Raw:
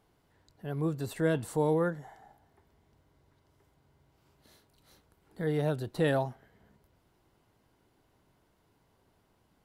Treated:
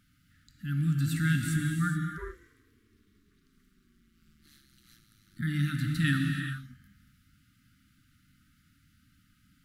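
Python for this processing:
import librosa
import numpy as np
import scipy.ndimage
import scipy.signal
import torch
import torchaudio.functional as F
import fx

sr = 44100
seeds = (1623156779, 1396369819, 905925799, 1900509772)

y = fx.brickwall_bandstop(x, sr, low_hz=300.0, high_hz=1200.0)
y = fx.rev_gated(y, sr, seeds[0], gate_ms=450, shape='flat', drr_db=2.0)
y = fx.ring_mod(y, sr, carrier_hz=fx.line((2.17, 230.0), (5.41, 46.0)), at=(2.17, 5.41), fade=0.02)
y = y * 10.0 ** (4.5 / 20.0)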